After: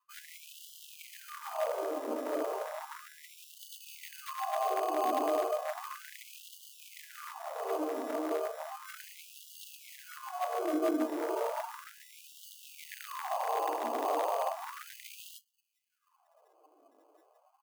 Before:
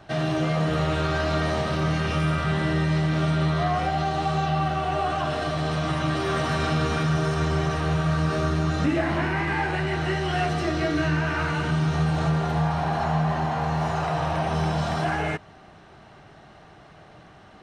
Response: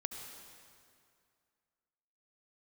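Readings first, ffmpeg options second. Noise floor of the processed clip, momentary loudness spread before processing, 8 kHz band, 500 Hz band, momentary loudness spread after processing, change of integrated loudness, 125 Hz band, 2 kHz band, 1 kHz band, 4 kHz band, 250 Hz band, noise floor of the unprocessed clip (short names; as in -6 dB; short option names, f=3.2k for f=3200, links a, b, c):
-73 dBFS, 2 LU, -5.0 dB, -7.0 dB, 18 LU, -10.5 dB, under -40 dB, -18.0 dB, -9.0 dB, -15.0 dB, -15.0 dB, -49 dBFS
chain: -filter_complex "[0:a]highpass=f=44:w=0.5412,highpass=f=44:w=1.3066,flanger=delay=9.5:depth=9:regen=32:speed=0.56:shape=triangular,highshelf=f=4.1k:g=-11,bandreject=f=400:w=12,asplit=2[a][b];[b]adelay=204.1,volume=-28dB,highshelf=f=4k:g=-4.59[c];[a][c]amix=inputs=2:normalize=0,afftdn=nr=24:nf=-36,acrusher=samples=24:mix=1:aa=0.000001,areverse,acompressor=threshold=-40dB:ratio=8,areverse,equalizer=f=125:t=o:w=1:g=8,equalizer=f=250:t=o:w=1:g=5,equalizer=f=500:t=o:w=1:g=8,equalizer=f=1k:t=o:w=1:g=5,equalizer=f=2k:t=o:w=1:g=-10,equalizer=f=4k:t=o:w=1:g=-8,equalizer=f=8k:t=o:w=1:g=-3,aeval=exprs='0.0335*(abs(mod(val(0)/0.0335+3,4)-2)-1)':c=same,afftfilt=real='re*gte(b*sr/1024,250*pow(2800/250,0.5+0.5*sin(2*PI*0.34*pts/sr)))':imag='im*gte(b*sr/1024,250*pow(2800/250,0.5+0.5*sin(2*PI*0.34*pts/sr)))':win_size=1024:overlap=0.75,volume=8.5dB"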